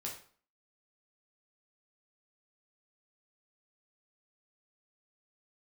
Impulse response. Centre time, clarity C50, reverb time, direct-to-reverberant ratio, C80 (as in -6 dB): 26 ms, 7.0 dB, 0.45 s, -2.5 dB, 11.5 dB